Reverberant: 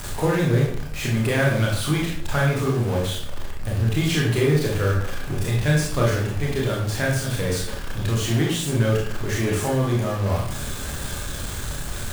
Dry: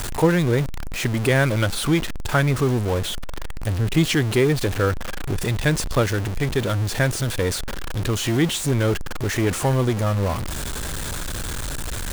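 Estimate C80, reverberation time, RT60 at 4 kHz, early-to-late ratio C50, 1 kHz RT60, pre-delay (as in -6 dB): 6.5 dB, 0.60 s, 0.45 s, 3.0 dB, 0.55 s, 24 ms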